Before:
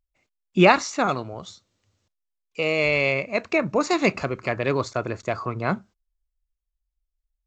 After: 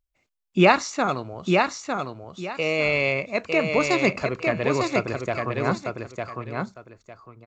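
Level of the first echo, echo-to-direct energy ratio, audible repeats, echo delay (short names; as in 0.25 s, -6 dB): -4.0 dB, -4.0 dB, 2, 0.904 s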